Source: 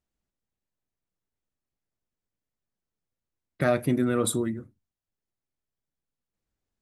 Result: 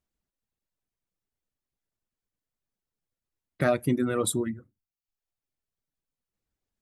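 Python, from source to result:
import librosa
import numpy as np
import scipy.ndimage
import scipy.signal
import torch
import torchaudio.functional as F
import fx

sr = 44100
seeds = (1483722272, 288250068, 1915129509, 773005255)

y = fx.dereverb_blind(x, sr, rt60_s=0.66)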